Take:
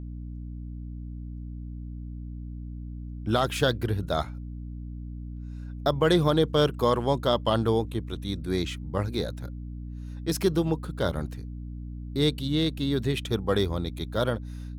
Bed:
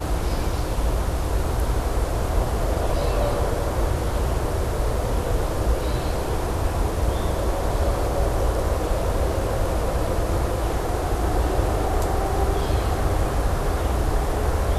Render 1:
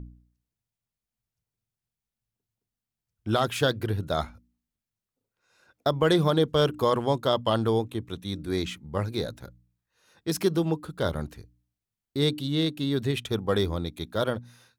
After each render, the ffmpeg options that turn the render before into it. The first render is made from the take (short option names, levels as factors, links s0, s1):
-af "bandreject=f=60:t=h:w=4,bandreject=f=120:t=h:w=4,bandreject=f=180:t=h:w=4,bandreject=f=240:t=h:w=4,bandreject=f=300:t=h:w=4"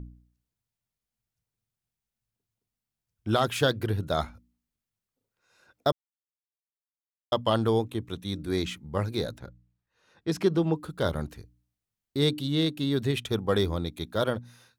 -filter_complex "[0:a]asettb=1/sr,asplit=3[s0][s1][s2];[s0]atrim=end=9.384[s3];[s1]atrim=start=9.38:end=10.76,asetpts=PTS-STARTPTS,afade=t=in:d=0.004:c=qsin,afade=t=out:st=1.376:d=0.004:c=qsin,aemphasis=mode=reproduction:type=50fm[s4];[s2]atrim=start=10.756[s5];[s3][s4]acrossfade=d=0.004:c1=hsin:c2=qsin[s6];[s6][s5]acrossfade=d=0.004:c1=qsin:c2=hsin,asplit=3[s7][s8][s9];[s7]atrim=end=5.92,asetpts=PTS-STARTPTS,afade=t=out:st=5.916:d=0.004:c=hsin[s10];[s8]atrim=start=5.92:end=7.32,asetpts=PTS-STARTPTS,volume=0[s11];[s9]atrim=start=7.32,asetpts=PTS-STARTPTS,afade=t=in:d=0.004:c=hsin[s12];[s10][s11][s12]concat=n=3:v=0:a=1"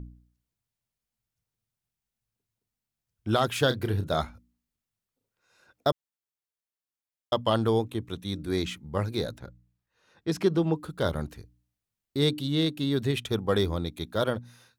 -filter_complex "[0:a]asettb=1/sr,asplit=3[s0][s1][s2];[s0]atrim=end=3.674[s3];[s1]atrim=start=3.67:end=4.22,asetpts=PTS-STARTPTS,afade=t=in:d=0.004:c=qsin,afade=t=out:st=0.546:d=0.004:c=qsin,asplit=2[s4][s5];[s5]adelay=31,volume=0.316[s6];[s4][s6]amix=inputs=2:normalize=0,atrim=end_sample=24255[s7];[s2]atrim=start=4.216[s8];[s3][s7]acrossfade=d=0.004:c1=hsin:c2=qsin[s9];[s9][s8]acrossfade=d=0.004:c1=qsin:c2=hsin"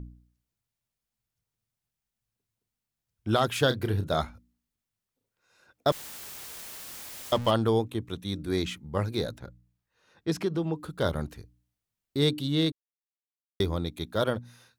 -filter_complex "[0:a]asettb=1/sr,asplit=3[s0][s1][s2];[s0]atrim=end=5.884[s3];[s1]atrim=start=5.88:end=7.51,asetpts=PTS-STARTPTS,afade=t=in:d=0.004:c=qsin,afade=t=out:st=1.626:d=0.004:c=qsin,aeval=exprs='val(0)+0.5*0.0237*sgn(val(0))':c=same[s4];[s2]atrim=start=7.506[s5];[s3][s4]acrossfade=d=0.004:c1=hsin:c2=qsin[s6];[s6][s5]acrossfade=d=0.004:c1=qsin:c2=hsin,asettb=1/sr,asplit=3[s7][s8][s9];[s7]atrim=end=10.354[s10];[s8]atrim=start=10.35:end=10.97,asetpts=PTS-STARTPTS,afade=t=in:d=0.004:c=qsin,afade=t=out:st=0.616:d=0.004:c=qsin,acompressor=threshold=0.0251:ratio=1.5:attack=3.2:release=140:knee=1:detection=peak[s11];[s9]atrim=start=10.966[s12];[s10][s11]acrossfade=d=0.004:c1=hsin:c2=qsin[s13];[s13][s12]acrossfade=d=0.004:c1=qsin:c2=hsin,asplit=3[s14][s15][s16];[s14]atrim=end=12.72,asetpts=PTS-STARTPTS,afade=t=out:st=12.716:d=0.004:c=hsin[s17];[s15]atrim=start=12.72:end=13.6,asetpts=PTS-STARTPTS,volume=0[s18];[s16]atrim=start=13.6,asetpts=PTS-STARTPTS,afade=t=in:d=0.004:c=hsin[s19];[s17][s18][s19]concat=n=3:v=0:a=1"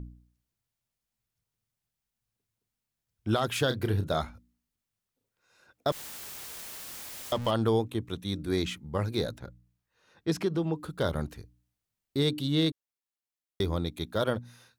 -af "alimiter=limit=0.158:level=0:latency=1:release=87"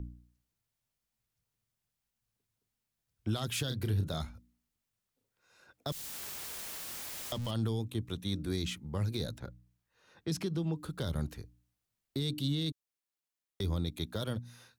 -filter_complex "[0:a]acrossover=split=230|3000[s0][s1][s2];[s1]acompressor=threshold=0.01:ratio=4[s3];[s0][s3][s2]amix=inputs=3:normalize=0,alimiter=limit=0.0631:level=0:latency=1:release=13"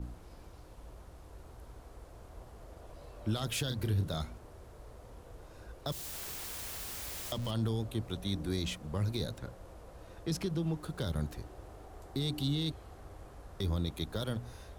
-filter_complex "[1:a]volume=0.0398[s0];[0:a][s0]amix=inputs=2:normalize=0"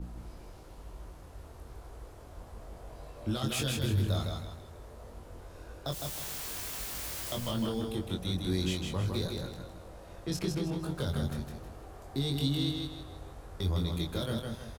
-filter_complex "[0:a]asplit=2[s0][s1];[s1]adelay=22,volume=0.631[s2];[s0][s2]amix=inputs=2:normalize=0,asplit=2[s3][s4];[s4]aecho=0:1:158|316|474|632|790:0.631|0.227|0.0818|0.0294|0.0106[s5];[s3][s5]amix=inputs=2:normalize=0"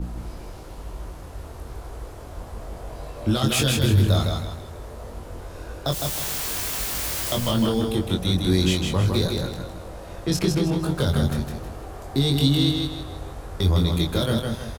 -af "volume=3.55"